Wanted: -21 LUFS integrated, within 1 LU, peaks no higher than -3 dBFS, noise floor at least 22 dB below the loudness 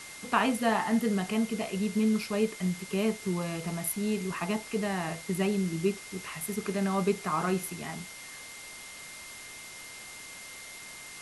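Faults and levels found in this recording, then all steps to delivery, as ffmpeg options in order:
steady tone 2100 Hz; tone level -47 dBFS; noise floor -45 dBFS; noise floor target -53 dBFS; loudness -30.5 LUFS; peak -11.0 dBFS; loudness target -21.0 LUFS
-> -af "bandreject=f=2.1k:w=30"
-af "afftdn=nr=8:nf=-45"
-af "volume=9.5dB,alimiter=limit=-3dB:level=0:latency=1"

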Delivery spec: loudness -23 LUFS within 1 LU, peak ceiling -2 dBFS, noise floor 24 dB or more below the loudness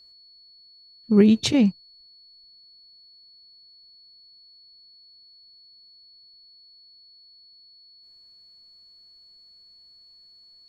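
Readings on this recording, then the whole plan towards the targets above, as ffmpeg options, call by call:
steady tone 4400 Hz; tone level -50 dBFS; loudness -19.0 LUFS; peak -5.5 dBFS; loudness target -23.0 LUFS
-> -af "bandreject=f=4.4k:w=30"
-af "volume=-4dB"

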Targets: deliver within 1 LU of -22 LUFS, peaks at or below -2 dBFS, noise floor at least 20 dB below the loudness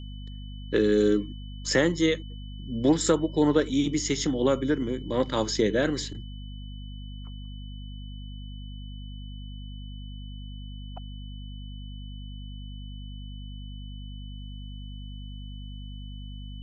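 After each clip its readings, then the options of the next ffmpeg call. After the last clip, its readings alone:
hum 50 Hz; harmonics up to 250 Hz; hum level -36 dBFS; steady tone 3000 Hz; tone level -50 dBFS; loudness -25.5 LUFS; peak -9.5 dBFS; loudness target -22.0 LUFS
-> -af "bandreject=f=50:t=h:w=4,bandreject=f=100:t=h:w=4,bandreject=f=150:t=h:w=4,bandreject=f=200:t=h:w=4,bandreject=f=250:t=h:w=4"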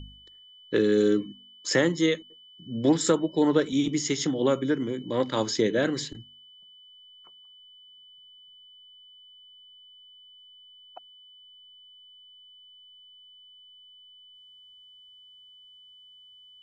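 hum none; steady tone 3000 Hz; tone level -50 dBFS
-> -af "bandreject=f=3k:w=30"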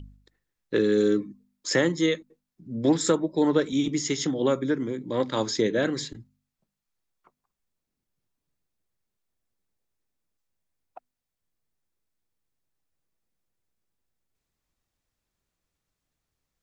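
steady tone none; loudness -25.5 LUFS; peak -9.5 dBFS; loudness target -22.0 LUFS
-> -af "volume=3.5dB"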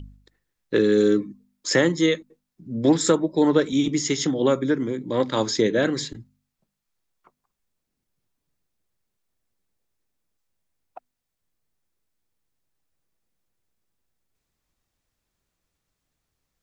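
loudness -22.0 LUFS; peak -6.0 dBFS; noise floor -81 dBFS

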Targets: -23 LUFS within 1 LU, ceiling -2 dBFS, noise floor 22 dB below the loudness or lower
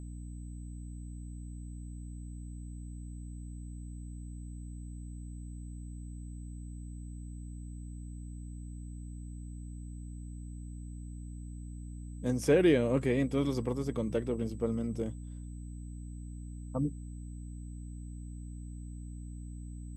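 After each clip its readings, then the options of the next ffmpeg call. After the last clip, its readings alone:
hum 60 Hz; harmonics up to 300 Hz; hum level -40 dBFS; steady tone 8000 Hz; tone level -62 dBFS; loudness -37.5 LUFS; peak -14.0 dBFS; loudness target -23.0 LUFS
-> -af "bandreject=f=60:t=h:w=4,bandreject=f=120:t=h:w=4,bandreject=f=180:t=h:w=4,bandreject=f=240:t=h:w=4,bandreject=f=300:t=h:w=4"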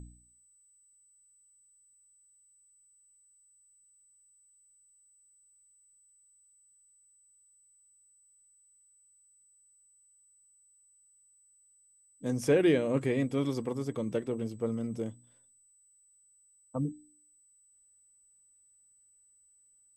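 hum none; steady tone 8000 Hz; tone level -62 dBFS
-> -af "bandreject=f=8k:w=30"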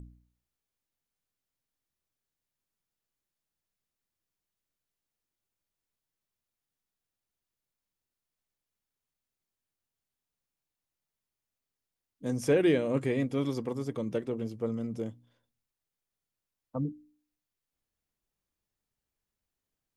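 steady tone none; loudness -31.5 LUFS; peak -14.0 dBFS; loudness target -23.0 LUFS
-> -af "volume=8.5dB"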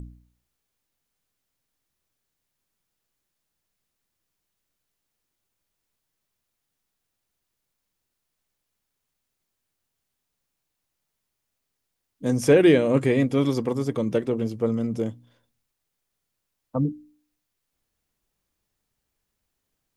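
loudness -23.0 LUFS; peak -5.5 dBFS; noise floor -81 dBFS

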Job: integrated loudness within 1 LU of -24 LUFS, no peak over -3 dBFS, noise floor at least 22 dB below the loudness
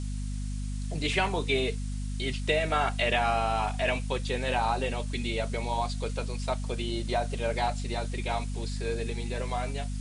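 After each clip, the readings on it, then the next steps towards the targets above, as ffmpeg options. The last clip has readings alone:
hum 50 Hz; harmonics up to 250 Hz; hum level -30 dBFS; noise floor -33 dBFS; noise floor target -52 dBFS; loudness -30.0 LUFS; peak -13.0 dBFS; loudness target -24.0 LUFS
-> -af "bandreject=f=50:t=h:w=6,bandreject=f=100:t=h:w=6,bandreject=f=150:t=h:w=6,bandreject=f=200:t=h:w=6,bandreject=f=250:t=h:w=6"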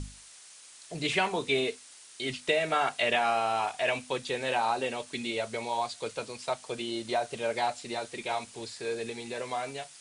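hum none; noise floor -52 dBFS; noise floor target -53 dBFS
-> -af "afftdn=nr=6:nf=-52"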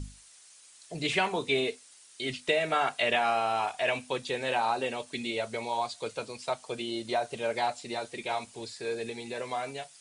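noise floor -55 dBFS; loudness -31.0 LUFS; peak -13.5 dBFS; loudness target -24.0 LUFS
-> -af "volume=7dB"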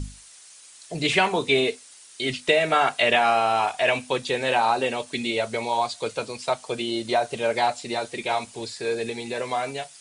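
loudness -24.0 LUFS; peak -6.5 dBFS; noise floor -49 dBFS

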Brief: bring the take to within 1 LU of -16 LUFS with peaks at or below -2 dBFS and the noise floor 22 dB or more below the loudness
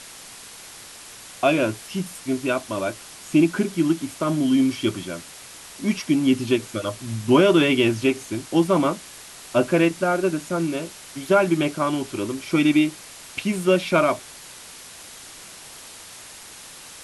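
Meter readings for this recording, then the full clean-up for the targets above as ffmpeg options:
noise floor -42 dBFS; noise floor target -44 dBFS; loudness -22.0 LUFS; peak -5.0 dBFS; loudness target -16.0 LUFS
-> -af "afftdn=nr=6:nf=-42"
-af "volume=6dB,alimiter=limit=-2dB:level=0:latency=1"

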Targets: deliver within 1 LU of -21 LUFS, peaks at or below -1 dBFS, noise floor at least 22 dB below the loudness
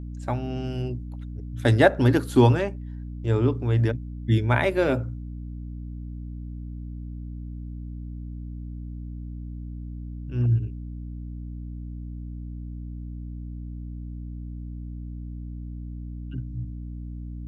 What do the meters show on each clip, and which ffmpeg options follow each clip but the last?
hum 60 Hz; harmonics up to 300 Hz; hum level -32 dBFS; loudness -28.5 LUFS; peak -3.5 dBFS; loudness target -21.0 LUFS
-> -af "bandreject=f=60:t=h:w=6,bandreject=f=120:t=h:w=6,bandreject=f=180:t=h:w=6,bandreject=f=240:t=h:w=6,bandreject=f=300:t=h:w=6"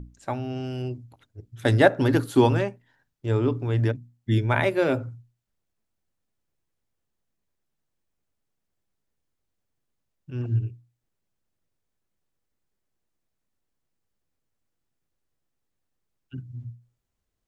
hum none; loudness -24.5 LUFS; peak -3.5 dBFS; loudness target -21.0 LUFS
-> -af "volume=3.5dB,alimiter=limit=-1dB:level=0:latency=1"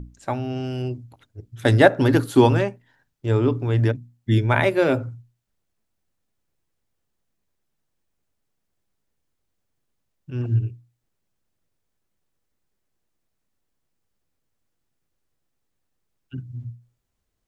loudness -21.0 LUFS; peak -1.0 dBFS; noise floor -76 dBFS

